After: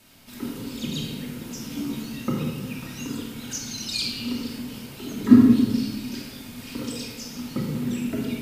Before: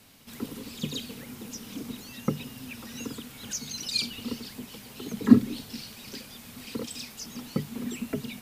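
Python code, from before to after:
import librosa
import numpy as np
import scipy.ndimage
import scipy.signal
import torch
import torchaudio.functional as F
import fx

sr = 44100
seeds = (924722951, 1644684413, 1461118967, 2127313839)

y = fx.doubler(x, sr, ms=14.0, db=-3, at=(1.52, 2.02))
y = fx.room_shoebox(y, sr, seeds[0], volume_m3=1200.0, walls='mixed', distance_m=2.7)
y = y * 10.0 ** (-1.5 / 20.0)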